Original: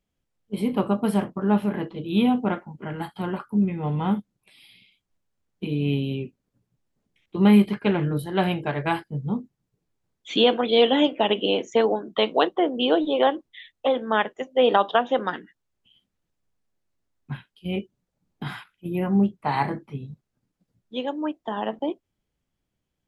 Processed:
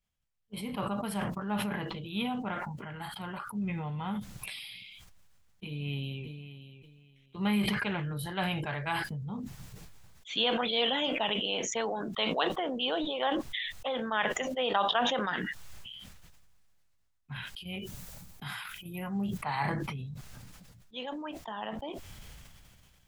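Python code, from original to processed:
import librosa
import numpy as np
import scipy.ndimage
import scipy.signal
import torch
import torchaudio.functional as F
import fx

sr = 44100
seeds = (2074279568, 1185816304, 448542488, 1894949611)

y = fx.echo_throw(x, sr, start_s=5.65, length_s=0.59, ms=580, feedback_pct=20, wet_db=-13.0)
y = fx.high_shelf(y, sr, hz=7700.0, db=11.5, at=(17.67, 19.38))
y = fx.peak_eq(y, sr, hz=330.0, db=-14.0, octaves=1.8)
y = fx.sustainer(y, sr, db_per_s=23.0)
y = y * 10.0 ** (-5.0 / 20.0)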